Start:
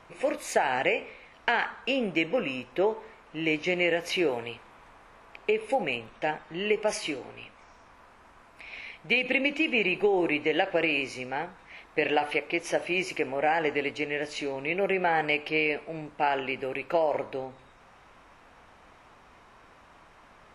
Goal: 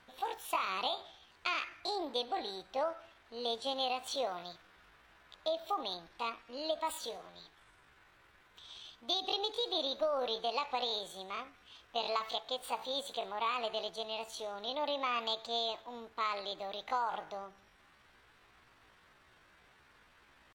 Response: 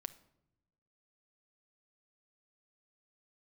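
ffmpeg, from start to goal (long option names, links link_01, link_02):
-af "asetrate=66075,aresample=44100,atempo=0.66742,volume=-9dB"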